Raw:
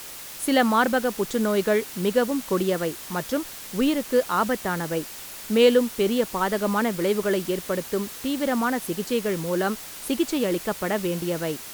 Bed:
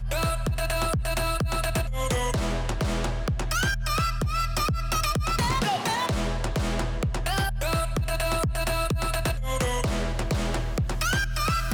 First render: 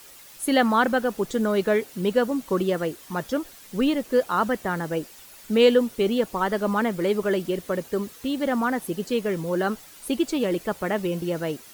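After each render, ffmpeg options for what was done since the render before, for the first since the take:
ffmpeg -i in.wav -af "afftdn=noise_reduction=10:noise_floor=-39" out.wav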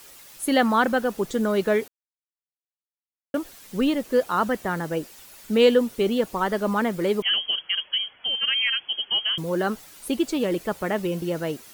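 ffmpeg -i in.wav -filter_complex "[0:a]asettb=1/sr,asplit=3[link_01][link_02][link_03];[link_01]atrim=end=7.224[link_04];[link_02]atrim=start=7.22:end=9.38,asetpts=PTS-STARTPTS,afade=type=in:duration=0.004:curve=qsin,afade=type=out:start_time=2.156:duration=0.004:curve=qsin,lowpass=frequency=2900:width_type=q:width=0.5098,lowpass=frequency=2900:width_type=q:width=0.6013,lowpass=frequency=2900:width_type=q:width=0.9,lowpass=frequency=2900:width_type=q:width=2.563,afreqshift=-3400[link_05];[link_03]atrim=start=9.376[link_06];[link_04][link_05]acrossfade=duration=0.004:curve1=hsin:curve2=qsin[link_07];[link_07][link_06]acrossfade=duration=0.004:curve1=qsin:curve2=hsin,asplit=3[link_08][link_09][link_10];[link_08]atrim=end=1.88,asetpts=PTS-STARTPTS,afade=type=out:start_time=1.876:duration=0.004:curve=hsin[link_11];[link_09]atrim=start=1.88:end=3.34,asetpts=PTS-STARTPTS,volume=0[link_12];[link_10]atrim=start=3.34,asetpts=PTS-STARTPTS,afade=type=in:duration=0.004:curve=hsin[link_13];[link_11][link_12][link_13]concat=n=3:v=0:a=1" out.wav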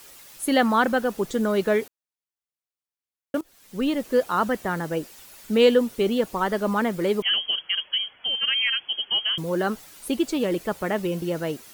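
ffmpeg -i in.wav -filter_complex "[0:a]asplit=2[link_01][link_02];[link_01]atrim=end=3.41,asetpts=PTS-STARTPTS,afade=type=out:start_time=3.406:duration=0.004:curve=hsin:silence=0.11885[link_03];[link_02]atrim=start=3.41,asetpts=PTS-STARTPTS,afade=type=in:duration=0.6:silence=0.11885[link_04];[link_03][link_04]concat=n=2:v=0:a=1" out.wav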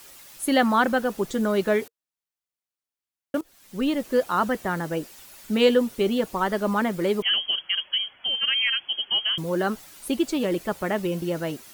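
ffmpeg -i in.wav -af "bandreject=frequency=460:width=12" out.wav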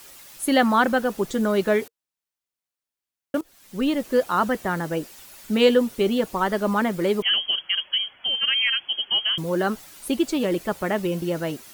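ffmpeg -i in.wav -af "volume=1.5dB" out.wav

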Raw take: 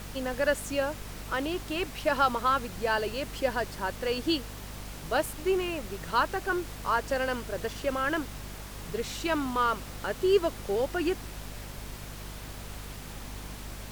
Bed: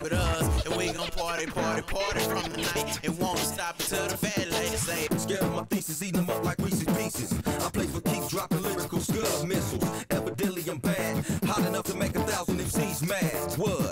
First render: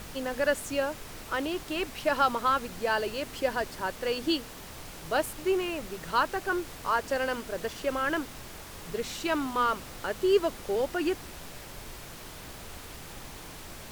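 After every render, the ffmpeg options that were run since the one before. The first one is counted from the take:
ffmpeg -i in.wav -af "bandreject=frequency=50:width_type=h:width=4,bandreject=frequency=100:width_type=h:width=4,bandreject=frequency=150:width_type=h:width=4,bandreject=frequency=200:width_type=h:width=4,bandreject=frequency=250:width_type=h:width=4" out.wav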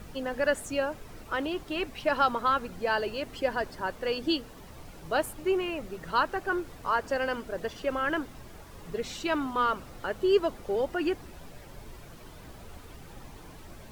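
ffmpeg -i in.wav -af "afftdn=noise_reduction=10:noise_floor=-44" out.wav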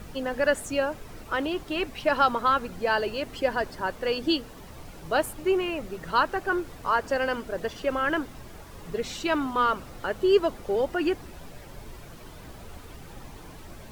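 ffmpeg -i in.wav -af "volume=3dB" out.wav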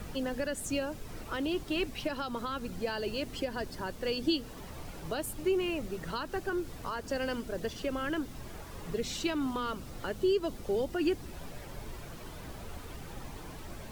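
ffmpeg -i in.wav -filter_complex "[0:a]alimiter=limit=-17dB:level=0:latency=1:release=162,acrossover=split=380|3000[link_01][link_02][link_03];[link_02]acompressor=threshold=-45dB:ratio=2[link_04];[link_01][link_04][link_03]amix=inputs=3:normalize=0" out.wav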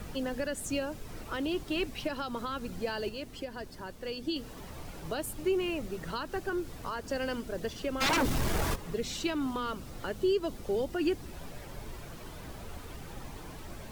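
ffmpeg -i in.wav -filter_complex "[0:a]asplit=3[link_01][link_02][link_03];[link_01]afade=type=out:start_time=8:duration=0.02[link_04];[link_02]aeval=exprs='0.0668*sin(PI/2*4.47*val(0)/0.0668)':channel_layout=same,afade=type=in:start_time=8:duration=0.02,afade=type=out:start_time=8.74:duration=0.02[link_05];[link_03]afade=type=in:start_time=8.74:duration=0.02[link_06];[link_04][link_05][link_06]amix=inputs=3:normalize=0,asplit=3[link_07][link_08][link_09];[link_07]atrim=end=3.092[link_10];[link_08]atrim=start=3.088:end=4.362,asetpts=PTS-STARTPTS,volume=-5dB[link_11];[link_09]atrim=start=4.358[link_12];[link_10][link_11]acrossfade=duration=0.004:curve1=hsin:curve2=hsin[link_13];[link_13][link_12]acrossfade=duration=0.004:curve1=hsin:curve2=hsin" out.wav

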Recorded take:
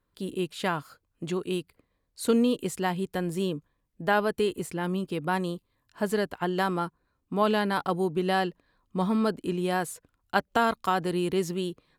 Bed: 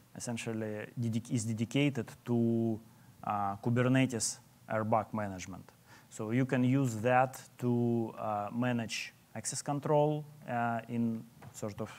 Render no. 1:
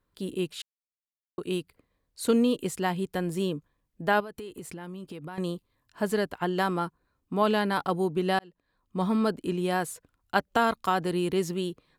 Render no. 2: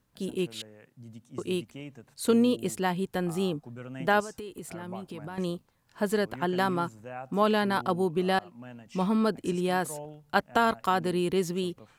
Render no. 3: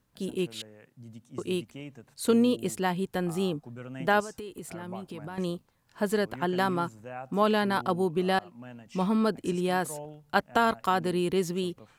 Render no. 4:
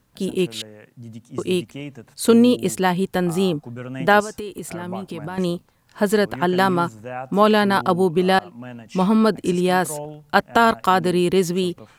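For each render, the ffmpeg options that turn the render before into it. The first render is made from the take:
ffmpeg -i in.wav -filter_complex "[0:a]asettb=1/sr,asplit=3[link_01][link_02][link_03];[link_01]atrim=end=4.204[link_04];[link_02]atrim=start=4.2:end=5.38,asetpts=PTS-STARTPTS,afade=type=in:duration=0.004:curve=qsin,afade=type=out:start_time=1.176:duration=0.004:curve=qsin,acompressor=threshold=-36dB:ratio=8:attack=3.2:release=140:knee=1:detection=peak[link_05];[link_03]atrim=start=5.376[link_06];[link_04][link_05]acrossfade=duration=0.004:curve1=hsin:curve2=qsin[link_07];[link_07][link_06]acrossfade=duration=0.004:curve1=qsin:curve2=hsin,asplit=4[link_08][link_09][link_10][link_11];[link_08]atrim=end=0.62,asetpts=PTS-STARTPTS,afade=type=out:start_time=0.616:duration=0.004:curve=hsin[link_12];[link_09]atrim=start=0.62:end=1.38,asetpts=PTS-STARTPTS,volume=0[link_13];[link_10]atrim=start=1.38:end=8.39,asetpts=PTS-STARTPTS,afade=type=in:duration=0.004:curve=hsin,afade=type=out:start_time=7.006:duration=0.004:curve=hsin[link_14];[link_11]atrim=start=8.39,asetpts=PTS-STARTPTS,afade=type=in:duration=0.69[link_15];[link_12][link_13][link_14][link_15]concat=n=4:v=0:a=1" out.wav
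ffmpeg -i in.wav -i bed.wav -filter_complex "[1:a]volume=-13dB[link_01];[0:a][link_01]amix=inputs=2:normalize=0" out.wav
ffmpeg -i in.wav -af anull out.wav
ffmpeg -i in.wav -af "volume=9dB,alimiter=limit=-2dB:level=0:latency=1" out.wav

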